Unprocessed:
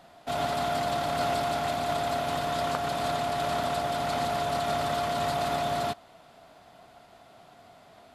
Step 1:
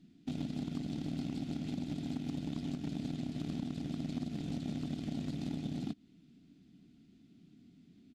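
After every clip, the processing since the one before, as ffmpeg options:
-af "firequalizer=gain_entry='entry(110,0);entry(170,10);entry(280,11);entry(570,-29);entry(990,-30);entry(1500,-20);entry(2400,-10);entry(6200,-8);entry(11000,-19)':delay=0.05:min_phase=1,acompressor=threshold=0.0251:ratio=6,aeval=exprs='0.0447*(cos(1*acos(clip(val(0)/0.0447,-1,1)))-cos(1*PI/2))+0.00631*(cos(3*acos(clip(val(0)/0.0447,-1,1)))-cos(3*PI/2))':c=same,volume=0.891"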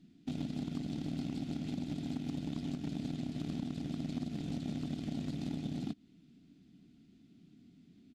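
-af anull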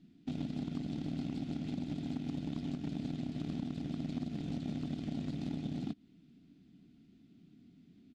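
-af "highshelf=f=7600:g=-11.5"

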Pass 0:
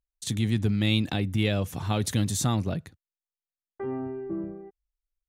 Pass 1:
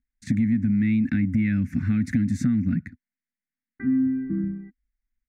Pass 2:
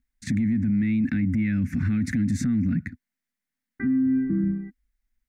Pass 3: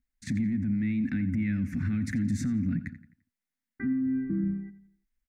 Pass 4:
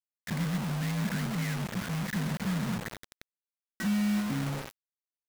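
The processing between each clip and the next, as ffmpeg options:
-filter_complex "[0:a]firequalizer=gain_entry='entry(150,0);entry(250,15);entry(400,-26);entry(980,-26);entry(1500,1);entry(2100,5);entry(3100,-25);entry(4900,-15);entry(11000,-25)':delay=0.05:min_phase=1,asplit=2[s0][s1];[s1]alimiter=limit=0.126:level=0:latency=1:release=20,volume=1.06[s2];[s0][s2]amix=inputs=2:normalize=0,acompressor=threshold=0.112:ratio=6"
-af "alimiter=limit=0.075:level=0:latency=1:release=25,volume=1.78"
-filter_complex "[0:a]asplit=2[s0][s1];[s1]adelay=86,lowpass=f=4400:p=1,volume=0.2,asplit=2[s2][s3];[s3]adelay=86,lowpass=f=4400:p=1,volume=0.44,asplit=2[s4][s5];[s5]adelay=86,lowpass=f=4400:p=1,volume=0.44,asplit=2[s6][s7];[s7]adelay=86,lowpass=f=4400:p=1,volume=0.44[s8];[s0][s2][s4][s6][s8]amix=inputs=5:normalize=0,volume=0.562"
-af "aeval=exprs='val(0)+0.5*0.0158*sgn(val(0))':c=same,highpass=f=230:t=q:w=0.5412,highpass=f=230:t=q:w=1.307,lowpass=f=2500:t=q:w=0.5176,lowpass=f=2500:t=q:w=0.7071,lowpass=f=2500:t=q:w=1.932,afreqshift=-54,acrusher=bits=5:mix=0:aa=0.000001"

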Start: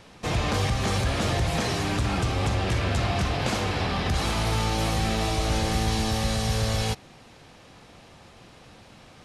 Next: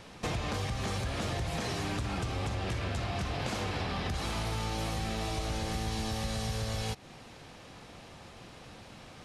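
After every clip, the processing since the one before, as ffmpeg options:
-af "acompressor=threshold=0.0282:ratio=6"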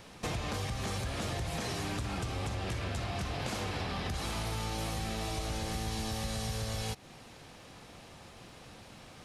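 -af "highshelf=f=10000:g=9,volume=0.794"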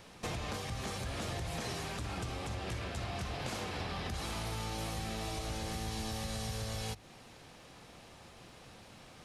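-af "bandreject=f=50:t=h:w=6,bandreject=f=100:t=h:w=6,bandreject=f=150:t=h:w=6,bandreject=f=200:t=h:w=6,bandreject=f=250:t=h:w=6,bandreject=f=300:t=h:w=6,volume=0.75"

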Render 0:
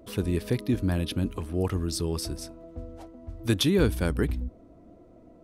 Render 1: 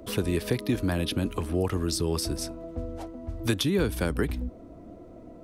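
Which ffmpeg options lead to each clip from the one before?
-filter_complex "[0:a]acrossover=split=200|400[s0][s1][s2];[s0]acompressor=threshold=0.0141:ratio=4[s3];[s1]acompressor=threshold=0.0126:ratio=4[s4];[s2]acompressor=threshold=0.0178:ratio=4[s5];[s3][s4][s5]amix=inputs=3:normalize=0,volume=2.11"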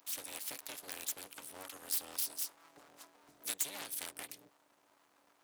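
-af "aeval=exprs='abs(val(0))':c=same,tremolo=f=290:d=0.824,aderivative,volume=1.5"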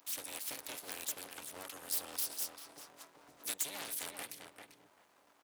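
-filter_complex "[0:a]asplit=2[s0][s1];[s1]volume=59.6,asoftclip=hard,volume=0.0168,volume=0.631[s2];[s0][s2]amix=inputs=2:normalize=0,asplit=2[s3][s4];[s4]adelay=393,lowpass=f=2600:p=1,volume=0.562,asplit=2[s5][s6];[s6]adelay=393,lowpass=f=2600:p=1,volume=0.16,asplit=2[s7][s8];[s8]adelay=393,lowpass=f=2600:p=1,volume=0.16[s9];[s3][s5][s7][s9]amix=inputs=4:normalize=0,volume=0.708"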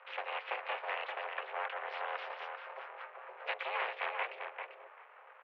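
-af "highpass=f=150:t=q:w=0.5412,highpass=f=150:t=q:w=1.307,lowpass=f=2400:t=q:w=0.5176,lowpass=f=2400:t=q:w=0.7071,lowpass=f=2400:t=q:w=1.932,afreqshift=240,volume=3.98"

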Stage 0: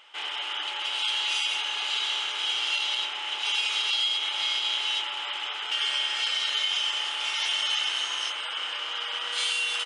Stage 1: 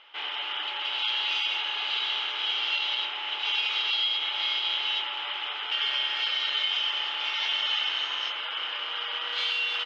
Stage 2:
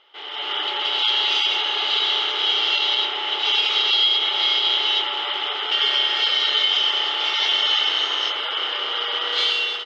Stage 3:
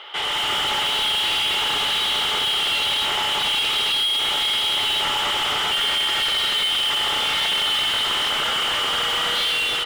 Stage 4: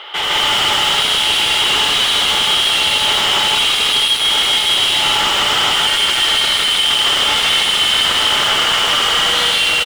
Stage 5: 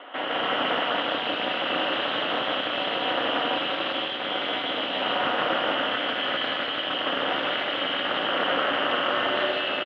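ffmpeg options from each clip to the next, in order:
-af "lowpass=f=4200:w=0.5412,lowpass=f=4200:w=1.3066"
-af "equalizer=f=400:t=o:w=0.33:g=9,equalizer=f=1000:t=o:w=0.33:g=-5,equalizer=f=1600:t=o:w=0.33:g=-6,equalizer=f=2500:t=o:w=0.33:g=-10,dynaudnorm=f=260:g=3:m=3.55"
-filter_complex "[0:a]asplit=2[s0][s1];[s1]acrusher=bits=4:mode=log:mix=0:aa=0.000001,volume=0.562[s2];[s0][s2]amix=inputs=2:normalize=0,asplit=2[s3][s4];[s4]highpass=f=720:p=1,volume=28.2,asoftclip=type=tanh:threshold=0.398[s5];[s3][s5]amix=inputs=2:normalize=0,lowpass=f=3100:p=1,volume=0.501,volume=0.473"
-filter_complex "[0:a]asoftclip=type=hard:threshold=0.075,asplit=2[s0][s1];[s1]aecho=0:1:78.72|157.4:0.282|1[s2];[s0][s2]amix=inputs=2:normalize=0,volume=2.11"
-af "aeval=exprs='val(0)*sin(2*PI*110*n/s)':c=same,highpass=190,equalizer=f=280:t=q:w=4:g=8,equalizer=f=570:t=q:w=4:g=9,equalizer=f=1000:t=q:w=4:g=-5,equalizer=f=2200:t=q:w=4:g=-8,lowpass=f=2400:w=0.5412,lowpass=f=2400:w=1.3066,aecho=1:1:177:0.501,volume=0.668"

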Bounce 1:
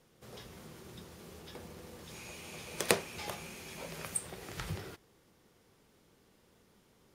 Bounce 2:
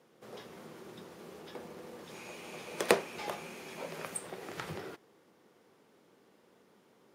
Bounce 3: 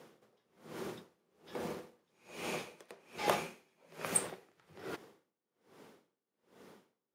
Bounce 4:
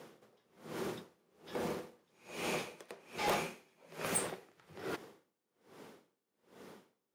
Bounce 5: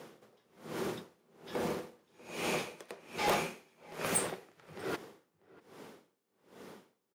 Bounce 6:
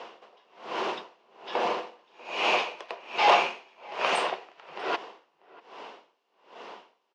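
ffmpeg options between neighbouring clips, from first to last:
-af "highpass=240,highshelf=f=2600:g=-10,volume=1.78"
-af "aeval=exprs='val(0)*pow(10,-37*(0.5-0.5*cos(2*PI*1.2*n/s))/20)':c=same,volume=2.66"
-af "asoftclip=type=tanh:threshold=0.0299,volume=1.5"
-filter_complex "[0:a]asplit=2[s0][s1];[s1]adelay=641.4,volume=0.0794,highshelf=f=4000:g=-14.4[s2];[s0][s2]amix=inputs=2:normalize=0,volume=1.41"
-af "highpass=460,equalizer=f=700:t=q:w=4:g=7,equalizer=f=1000:t=q:w=4:g=9,equalizer=f=2800:t=q:w=4:g=9,lowpass=f=5300:w=0.5412,lowpass=f=5300:w=1.3066,volume=2.24"

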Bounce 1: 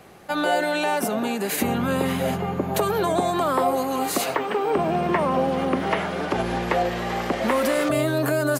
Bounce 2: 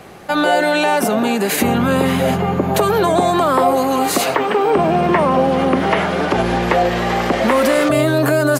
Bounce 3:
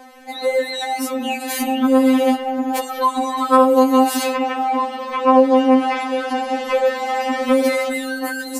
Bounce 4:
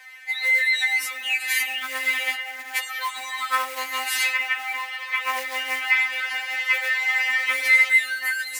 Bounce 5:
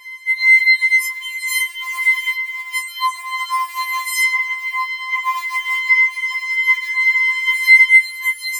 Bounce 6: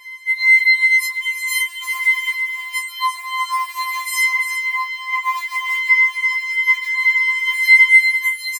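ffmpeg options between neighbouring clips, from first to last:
-filter_complex "[0:a]highshelf=f=10000:g=-5,asplit=2[s0][s1];[s1]alimiter=limit=0.119:level=0:latency=1,volume=0.841[s2];[s0][s2]amix=inputs=2:normalize=0,volume=1.58"
-af "afftfilt=real='re*3.46*eq(mod(b,12),0)':imag='im*3.46*eq(mod(b,12),0)':win_size=2048:overlap=0.75,volume=0.794"
-af "acrusher=bits=6:mode=log:mix=0:aa=0.000001,highpass=f=2000:t=q:w=5.5,volume=0.75"
-filter_complex "[0:a]asplit=2[s0][s1];[s1]acompressor=threshold=0.0282:ratio=5,volume=0.794[s2];[s0][s2]amix=inputs=2:normalize=0,afftfilt=real='re*4*eq(mod(b,16),0)':imag='im*4*eq(mod(b,16),0)':win_size=2048:overlap=0.75,volume=0.841"
-af "aecho=1:1:344:0.355,volume=0.891"

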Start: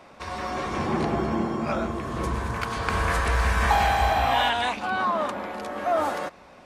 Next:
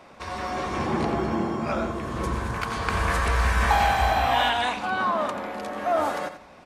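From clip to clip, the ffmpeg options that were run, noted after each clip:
-af "aecho=1:1:86|172|258:0.282|0.0705|0.0176"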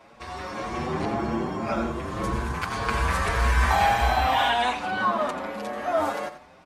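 -filter_complex "[0:a]dynaudnorm=f=540:g=5:m=1.5,asplit=2[s0][s1];[s1]adelay=7,afreqshift=1.8[s2];[s0][s2]amix=inputs=2:normalize=1"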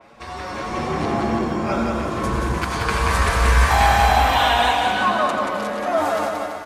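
-filter_complex "[0:a]asplit=2[s0][s1];[s1]aecho=0:1:180|333|463|573.6|667.6:0.631|0.398|0.251|0.158|0.1[s2];[s0][s2]amix=inputs=2:normalize=0,adynamicequalizer=threshold=0.02:dfrequency=3500:dqfactor=0.7:tfrequency=3500:tqfactor=0.7:attack=5:release=100:ratio=0.375:range=1.5:mode=boostabove:tftype=highshelf,volume=1.5"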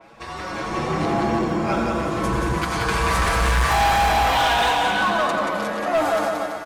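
-af "aecho=1:1:6.1:0.38,asoftclip=type=hard:threshold=0.178"

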